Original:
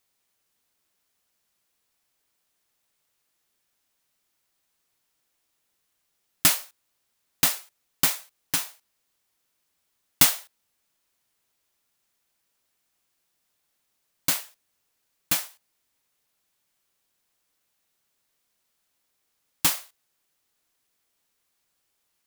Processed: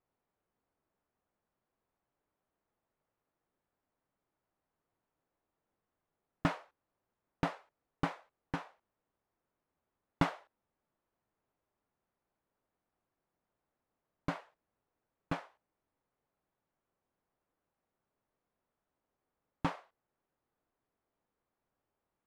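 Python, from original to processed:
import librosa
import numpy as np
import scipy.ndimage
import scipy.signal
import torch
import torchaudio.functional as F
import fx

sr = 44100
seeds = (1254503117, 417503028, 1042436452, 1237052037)

y = scipy.signal.sosfilt(scipy.signal.butter(2, 1000.0, 'lowpass', fs=sr, output='sos'), x)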